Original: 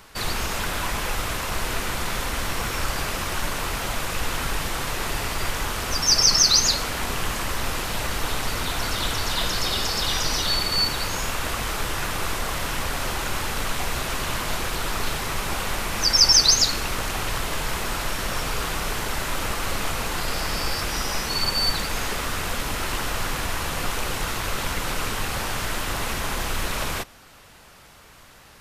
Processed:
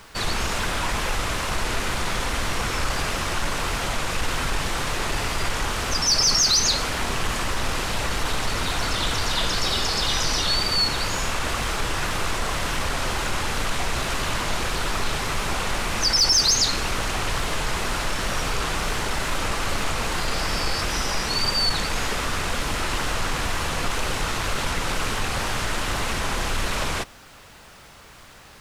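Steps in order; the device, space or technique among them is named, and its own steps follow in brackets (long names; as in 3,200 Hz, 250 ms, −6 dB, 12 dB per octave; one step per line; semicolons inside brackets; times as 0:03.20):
compact cassette (soft clipping −16 dBFS, distortion −14 dB; low-pass filter 9,400 Hz 12 dB per octave; tape wow and flutter; white noise bed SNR 37 dB)
level +2.5 dB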